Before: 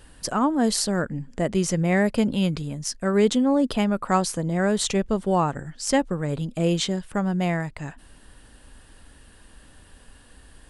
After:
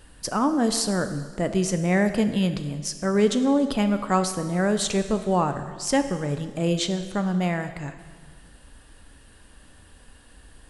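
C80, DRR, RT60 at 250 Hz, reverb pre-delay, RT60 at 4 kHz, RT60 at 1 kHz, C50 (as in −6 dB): 11.5 dB, 8.5 dB, 1.7 s, 4 ms, 1.6 s, 1.6 s, 10.5 dB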